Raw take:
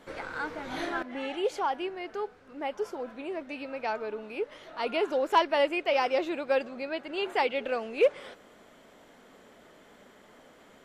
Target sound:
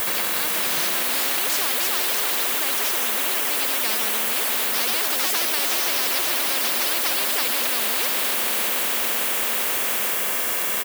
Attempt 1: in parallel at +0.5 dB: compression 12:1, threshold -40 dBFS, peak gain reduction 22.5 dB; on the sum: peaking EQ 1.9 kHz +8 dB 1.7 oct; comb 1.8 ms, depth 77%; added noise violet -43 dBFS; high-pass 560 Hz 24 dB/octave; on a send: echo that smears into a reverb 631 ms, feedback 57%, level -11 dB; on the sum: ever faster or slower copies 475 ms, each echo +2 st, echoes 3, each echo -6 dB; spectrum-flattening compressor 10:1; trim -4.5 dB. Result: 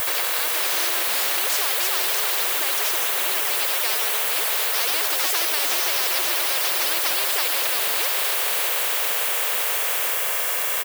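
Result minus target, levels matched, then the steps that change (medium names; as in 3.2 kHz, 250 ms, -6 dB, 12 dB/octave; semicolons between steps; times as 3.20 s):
compression: peak gain reduction -10.5 dB; 250 Hz band -7.5 dB
change: compression 12:1, threshold -51.5 dBFS, peak gain reduction 33.5 dB; change: high-pass 230 Hz 24 dB/octave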